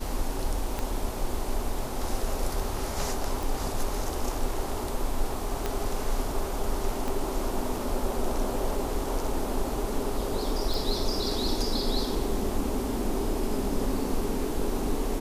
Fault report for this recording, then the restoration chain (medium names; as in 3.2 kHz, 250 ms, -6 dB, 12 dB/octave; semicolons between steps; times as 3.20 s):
0.79 s: pop -16 dBFS
3.43 s: pop
5.66 s: pop -14 dBFS
7.08 s: pop
10.74 s: pop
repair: de-click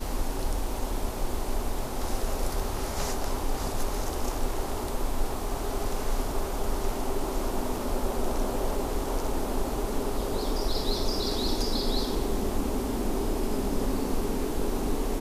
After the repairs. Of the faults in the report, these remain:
0.79 s: pop
5.66 s: pop
7.08 s: pop